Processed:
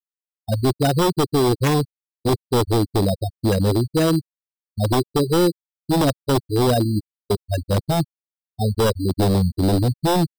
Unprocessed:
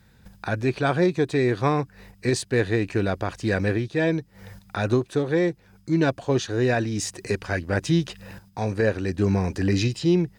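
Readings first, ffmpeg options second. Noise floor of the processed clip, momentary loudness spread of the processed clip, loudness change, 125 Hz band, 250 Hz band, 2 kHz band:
below −85 dBFS, 8 LU, +3.5 dB, +5.0 dB, +3.0 dB, −5.0 dB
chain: -af "lowpass=frequency=1100:poles=1,afftfilt=real='re*gte(hypot(re,im),0.224)':imag='im*gte(hypot(re,im),0.224)':win_size=1024:overlap=0.75,agate=range=-33dB:threshold=-36dB:ratio=3:detection=peak,acrusher=samples=10:mix=1:aa=0.000001,aeval=exprs='0.106*(abs(mod(val(0)/0.106+3,4)-2)-1)':channel_layout=same,volume=7.5dB"

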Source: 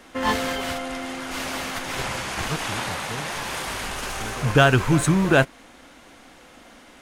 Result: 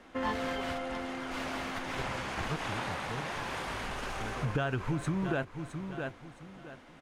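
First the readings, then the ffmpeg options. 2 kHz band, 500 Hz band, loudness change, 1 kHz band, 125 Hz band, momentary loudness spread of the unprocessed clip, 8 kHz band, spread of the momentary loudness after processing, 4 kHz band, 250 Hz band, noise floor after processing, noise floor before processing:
−11.5 dB, −11.5 dB, −11.5 dB, −9.5 dB, −11.5 dB, 12 LU, −17.0 dB, 8 LU, −12.5 dB, −11.0 dB, −54 dBFS, −49 dBFS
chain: -af "lowpass=frequency=2300:poles=1,aecho=1:1:665|1330|1995:0.188|0.0509|0.0137,acompressor=threshold=-23dB:ratio=6,volume=-5.5dB"

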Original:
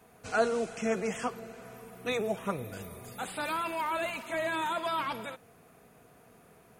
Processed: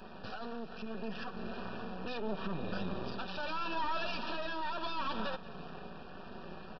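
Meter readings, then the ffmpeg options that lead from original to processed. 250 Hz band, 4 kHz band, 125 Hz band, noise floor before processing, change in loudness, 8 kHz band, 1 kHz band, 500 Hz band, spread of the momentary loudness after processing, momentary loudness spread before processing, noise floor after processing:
−3.0 dB, −1.0 dB, −0.5 dB, −59 dBFS, −7.0 dB, below −20 dB, −5.0 dB, −9.0 dB, 12 LU, 14 LU, −48 dBFS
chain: -filter_complex "[0:a]equalizer=frequency=190:width_type=o:width=0.77:gain=2,aecho=1:1:5.3:0.55,acompressor=threshold=-51dB:ratio=2,alimiter=level_in=17dB:limit=-24dB:level=0:latency=1:release=72,volume=-17dB,dynaudnorm=framelen=670:gausssize=5:maxgain=5dB,aresample=11025,aeval=exprs='max(val(0),0)':channel_layout=same,aresample=44100,flanger=delay=3.1:depth=1.5:regen=-67:speed=0.63:shape=triangular,tremolo=f=0.75:d=0.31,asuperstop=centerf=2100:order=12:qfactor=4,asplit=2[link_01][link_02];[link_02]aecho=0:1:188:0.119[link_03];[link_01][link_03]amix=inputs=2:normalize=0,volume=17dB"

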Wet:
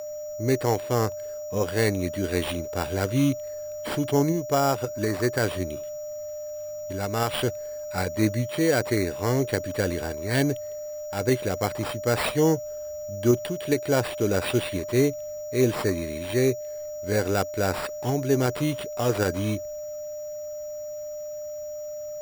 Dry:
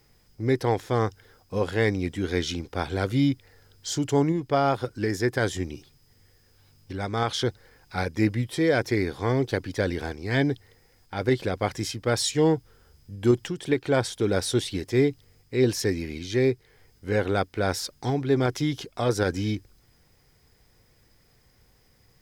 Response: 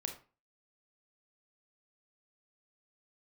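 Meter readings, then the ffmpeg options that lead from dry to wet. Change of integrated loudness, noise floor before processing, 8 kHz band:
−0.5 dB, −62 dBFS, +2.0 dB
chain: -af "aeval=exprs='val(0)+0.0251*sin(2*PI*12000*n/s)':channel_layout=same,acrusher=samples=7:mix=1:aa=0.000001"

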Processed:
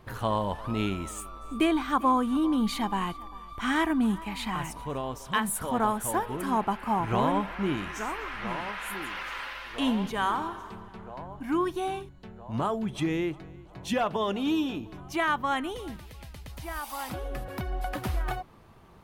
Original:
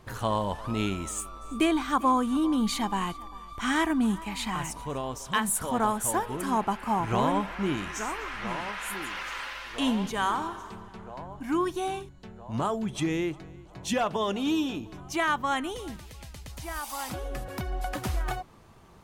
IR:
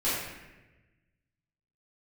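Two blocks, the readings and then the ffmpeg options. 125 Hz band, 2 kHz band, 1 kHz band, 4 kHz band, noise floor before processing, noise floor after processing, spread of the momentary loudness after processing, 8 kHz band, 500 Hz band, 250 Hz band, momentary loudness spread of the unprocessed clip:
0.0 dB, −0.5 dB, 0.0 dB, −1.5 dB, −48 dBFS, −48 dBFS, 16 LU, −5.0 dB, 0.0 dB, 0.0 dB, 15 LU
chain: -af "equalizer=frequency=7000:width=1.1:gain=-7.5"

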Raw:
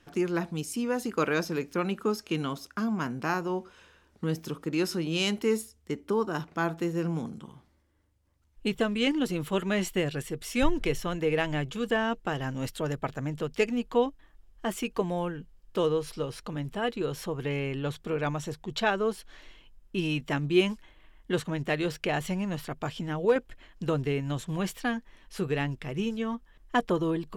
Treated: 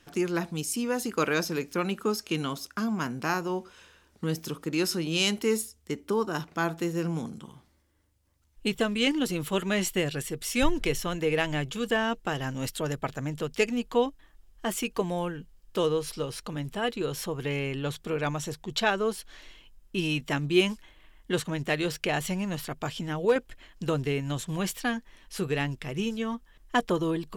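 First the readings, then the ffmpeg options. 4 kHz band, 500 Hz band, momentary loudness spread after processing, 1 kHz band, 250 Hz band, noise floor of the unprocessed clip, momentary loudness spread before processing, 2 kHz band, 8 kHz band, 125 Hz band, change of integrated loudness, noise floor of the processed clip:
+3.5 dB, 0.0 dB, 9 LU, +0.5 dB, 0.0 dB, −64 dBFS, 9 LU, +2.0 dB, +6.5 dB, 0.0 dB, +1.0 dB, −63 dBFS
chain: -af "highshelf=frequency=3300:gain=7.5"

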